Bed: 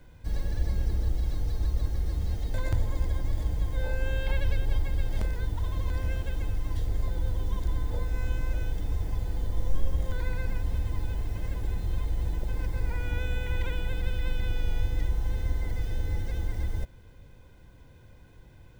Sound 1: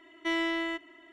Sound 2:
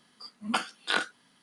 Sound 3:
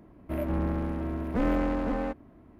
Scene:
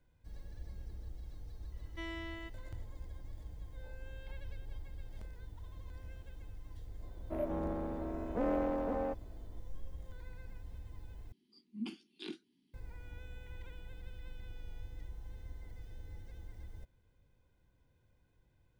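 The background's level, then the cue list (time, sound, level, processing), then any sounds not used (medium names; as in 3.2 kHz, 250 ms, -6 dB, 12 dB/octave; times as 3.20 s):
bed -19 dB
1.72 s: add 1 -14.5 dB
7.01 s: add 3 -15 dB + peaking EQ 590 Hz +13 dB 2.2 oct
11.32 s: replace with 2 -13 dB + FFT filter 120 Hz 0 dB, 190 Hz +6 dB, 370 Hz +13 dB, 560 Hz -27 dB, 870 Hz -13 dB, 1.4 kHz -24 dB, 2.4 kHz -4 dB, 4.8 kHz -6 dB, 8.4 kHz -15 dB, 13 kHz -4 dB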